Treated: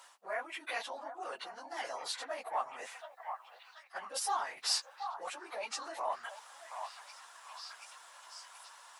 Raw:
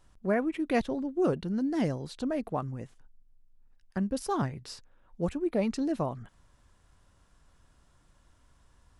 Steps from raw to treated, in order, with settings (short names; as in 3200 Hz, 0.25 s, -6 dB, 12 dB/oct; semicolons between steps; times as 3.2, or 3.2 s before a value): phase scrambler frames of 50 ms; limiter -25 dBFS, peak gain reduction 11 dB; reverse; compressor 6:1, threshold -43 dBFS, peak gain reduction 13.5 dB; reverse; Chebyshev high-pass 780 Hz, order 3; delay with a stepping band-pass 0.73 s, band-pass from 930 Hz, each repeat 0.7 oct, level -6 dB; gain +16 dB